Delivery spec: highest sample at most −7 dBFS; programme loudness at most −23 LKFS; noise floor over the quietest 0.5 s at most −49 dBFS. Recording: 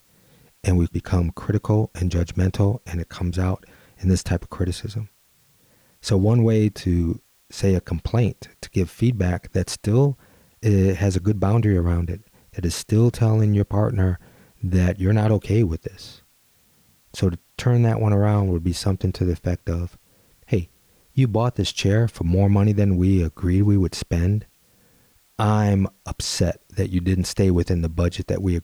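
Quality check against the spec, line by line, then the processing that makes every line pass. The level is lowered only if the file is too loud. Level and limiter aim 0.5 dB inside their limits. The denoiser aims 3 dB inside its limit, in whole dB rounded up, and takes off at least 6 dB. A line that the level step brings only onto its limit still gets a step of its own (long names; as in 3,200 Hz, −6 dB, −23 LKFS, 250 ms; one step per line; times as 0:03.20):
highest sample −9.5 dBFS: in spec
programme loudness −22.0 LKFS: out of spec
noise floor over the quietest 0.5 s −60 dBFS: in spec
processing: level −1.5 dB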